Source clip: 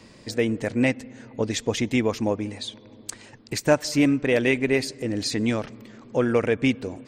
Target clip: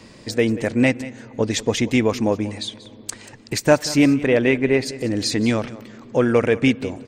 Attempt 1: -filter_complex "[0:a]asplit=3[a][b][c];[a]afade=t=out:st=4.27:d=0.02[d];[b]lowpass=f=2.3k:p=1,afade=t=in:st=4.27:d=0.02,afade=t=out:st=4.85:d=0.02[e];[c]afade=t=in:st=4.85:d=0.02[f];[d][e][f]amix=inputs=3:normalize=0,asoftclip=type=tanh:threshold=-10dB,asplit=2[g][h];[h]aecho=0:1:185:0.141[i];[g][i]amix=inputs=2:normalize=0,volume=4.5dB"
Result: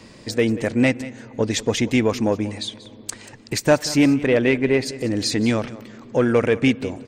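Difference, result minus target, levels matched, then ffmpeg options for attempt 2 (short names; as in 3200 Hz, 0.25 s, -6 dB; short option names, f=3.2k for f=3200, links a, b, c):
soft clip: distortion +14 dB
-filter_complex "[0:a]asplit=3[a][b][c];[a]afade=t=out:st=4.27:d=0.02[d];[b]lowpass=f=2.3k:p=1,afade=t=in:st=4.27:d=0.02,afade=t=out:st=4.85:d=0.02[e];[c]afade=t=in:st=4.85:d=0.02[f];[d][e][f]amix=inputs=3:normalize=0,asoftclip=type=tanh:threshold=-2dB,asplit=2[g][h];[h]aecho=0:1:185:0.141[i];[g][i]amix=inputs=2:normalize=0,volume=4.5dB"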